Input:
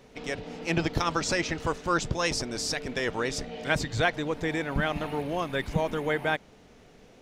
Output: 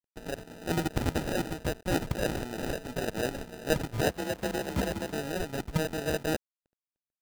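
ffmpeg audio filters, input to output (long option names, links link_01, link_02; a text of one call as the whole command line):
ffmpeg -i in.wav -filter_complex "[0:a]acrusher=samples=40:mix=1:aa=0.000001,asplit=3[link_01][link_02][link_03];[link_01]afade=type=out:start_time=4.03:duration=0.02[link_04];[link_02]afreqshift=38,afade=type=in:start_time=4.03:duration=0.02,afade=type=out:start_time=5.11:duration=0.02[link_05];[link_03]afade=type=in:start_time=5.11:duration=0.02[link_06];[link_04][link_05][link_06]amix=inputs=3:normalize=0,aeval=exprs='sgn(val(0))*max(abs(val(0))-0.00596,0)':channel_layout=same,volume=-1.5dB" out.wav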